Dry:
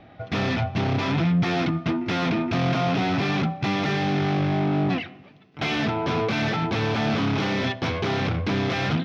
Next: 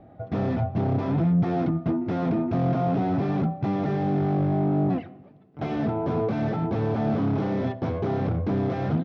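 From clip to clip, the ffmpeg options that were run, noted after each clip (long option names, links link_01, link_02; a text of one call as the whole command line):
ffmpeg -i in.wav -af "firequalizer=gain_entry='entry(660,0);entry(960,-6);entry(2500,-19)':delay=0.05:min_phase=1" out.wav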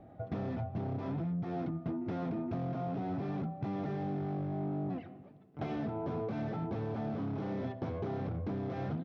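ffmpeg -i in.wav -af "acompressor=threshold=-29dB:ratio=6,volume=-4.5dB" out.wav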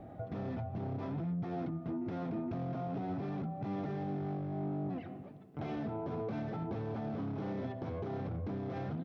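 ffmpeg -i in.wav -af "alimiter=level_in=12dB:limit=-24dB:level=0:latency=1:release=180,volume=-12dB,volume=5dB" out.wav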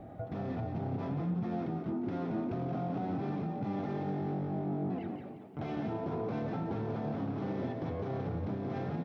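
ffmpeg -i in.wav -filter_complex "[0:a]asplit=5[link_01][link_02][link_03][link_04][link_05];[link_02]adelay=176,afreqshift=43,volume=-6dB[link_06];[link_03]adelay=352,afreqshift=86,volume=-15.1dB[link_07];[link_04]adelay=528,afreqshift=129,volume=-24.2dB[link_08];[link_05]adelay=704,afreqshift=172,volume=-33.4dB[link_09];[link_01][link_06][link_07][link_08][link_09]amix=inputs=5:normalize=0,volume=1.5dB" out.wav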